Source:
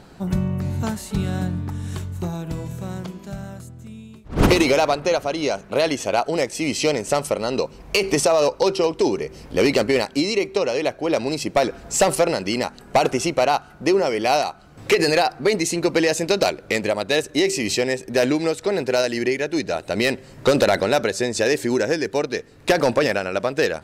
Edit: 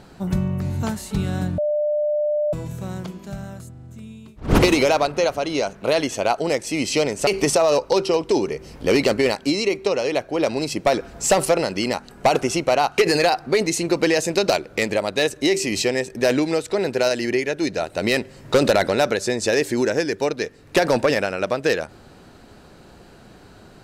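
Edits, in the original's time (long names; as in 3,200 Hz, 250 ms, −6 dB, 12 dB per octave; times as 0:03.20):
0:01.58–0:02.53: beep over 597 Hz −18 dBFS
0:03.71: stutter 0.04 s, 4 plays
0:07.15–0:07.97: remove
0:13.68–0:14.91: remove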